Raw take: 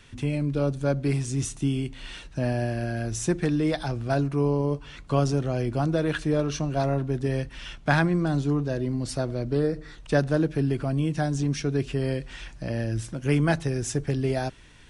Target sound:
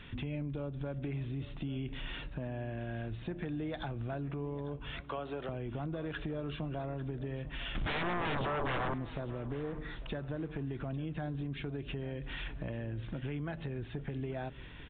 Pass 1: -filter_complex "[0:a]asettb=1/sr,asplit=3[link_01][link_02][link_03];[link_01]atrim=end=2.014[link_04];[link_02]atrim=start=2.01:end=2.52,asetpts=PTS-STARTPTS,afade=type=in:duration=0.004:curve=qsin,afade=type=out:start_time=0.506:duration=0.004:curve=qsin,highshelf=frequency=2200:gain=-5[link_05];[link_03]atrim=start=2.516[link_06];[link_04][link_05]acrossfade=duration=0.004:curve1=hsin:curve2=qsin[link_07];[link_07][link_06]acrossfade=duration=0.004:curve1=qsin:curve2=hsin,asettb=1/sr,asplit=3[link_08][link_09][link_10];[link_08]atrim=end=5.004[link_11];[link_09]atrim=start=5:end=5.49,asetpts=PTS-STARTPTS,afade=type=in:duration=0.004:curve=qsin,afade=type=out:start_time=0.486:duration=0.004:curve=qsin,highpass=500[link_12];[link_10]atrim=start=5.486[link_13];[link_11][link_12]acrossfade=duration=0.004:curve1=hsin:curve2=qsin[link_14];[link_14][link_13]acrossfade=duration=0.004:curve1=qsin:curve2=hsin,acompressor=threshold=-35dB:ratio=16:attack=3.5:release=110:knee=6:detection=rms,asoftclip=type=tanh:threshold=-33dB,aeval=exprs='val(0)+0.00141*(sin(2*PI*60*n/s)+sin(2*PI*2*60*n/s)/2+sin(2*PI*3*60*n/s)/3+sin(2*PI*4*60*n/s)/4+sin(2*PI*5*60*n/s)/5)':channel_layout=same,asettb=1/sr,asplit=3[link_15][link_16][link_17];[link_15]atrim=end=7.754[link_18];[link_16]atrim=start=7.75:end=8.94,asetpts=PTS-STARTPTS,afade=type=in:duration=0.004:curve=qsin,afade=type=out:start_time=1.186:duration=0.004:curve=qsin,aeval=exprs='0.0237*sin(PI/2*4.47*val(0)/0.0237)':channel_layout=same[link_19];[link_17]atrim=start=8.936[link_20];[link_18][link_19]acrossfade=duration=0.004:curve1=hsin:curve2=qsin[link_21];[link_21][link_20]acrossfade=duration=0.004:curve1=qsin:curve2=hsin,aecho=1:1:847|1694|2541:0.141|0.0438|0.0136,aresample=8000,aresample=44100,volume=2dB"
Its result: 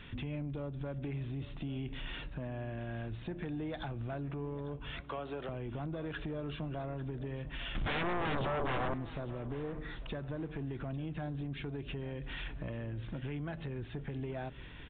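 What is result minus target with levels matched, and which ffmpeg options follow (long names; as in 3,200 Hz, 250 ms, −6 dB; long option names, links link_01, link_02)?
soft clipping: distortion +14 dB
-filter_complex "[0:a]asettb=1/sr,asplit=3[link_01][link_02][link_03];[link_01]atrim=end=2.014[link_04];[link_02]atrim=start=2.01:end=2.52,asetpts=PTS-STARTPTS,afade=type=in:duration=0.004:curve=qsin,afade=type=out:start_time=0.506:duration=0.004:curve=qsin,highshelf=frequency=2200:gain=-5[link_05];[link_03]atrim=start=2.516[link_06];[link_04][link_05]acrossfade=duration=0.004:curve1=hsin:curve2=qsin[link_07];[link_07][link_06]acrossfade=duration=0.004:curve1=qsin:curve2=hsin,asettb=1/sr,asplit=3[link_08][link_09][link_10];[link_08]atrim=end=5.004[link_11];[link_09]atrim=start=5:end=5.49,asetpts=PTS-STARTPTS,afade=type=in:duration=0.004:curve=qsin,afade=type=out:start_time=0.486:duration=0.004:curve=qsin,highpass=500[link_12];[link_10]atrim=start=5.486[link_13];[link_11][link_12]acrossfade=duration=0.004:curve1=hsin:curve2=qsin[link_14];[link_14][link_13]acrossfade=duration=0.004:curve1=qsin:curve2=hsin,acompressor=threshold=-35dB:ratio=16:attack=3.5:release=110:knee=6:detection=rms,asoftclip=type=tanh:threshold=-25dB,aeval=exprs='val(0)+0.00141*(sin(2*PI*60*n/s)+sin(2*PI*2*60*n/s)/2+sin(2*PI*3*60*n/s)/3+sin(2*PI*4*60*n/s)/4+sin(2*PI*5*60*n/s)/5)':channel_layout=same,asettb=1/sr,asplit=3[link_15][link_16][link_17];[link_15]atrim=end=7.754[link_18];[link_16]atrim=start=7.75:end=8.94,asetpts=PTS-STARTPTS,afade=type=in:duration=0.004:curve=qsin,afade=type=out:start_time=1.186:duration=0.004:curve=qsin,aeval=exprs='0.0237*sin(PI/2*4.47*val(0)/0.0237)':channel_layout=same[link_19];[link_17]atrim=start=8.936[link_20];[link_18][link_19]acrossfade=duration=0.004:curve1=hsin:curve2=qsin[link_21];[link_21][link_20]acrossfade=duration=0.004:curve1=qsin:curve2=hsin,aecho=1:1:847|1694|2541:0.141|0.0438|0.0136,aresample=8000,aresample=44100,volume=2dB"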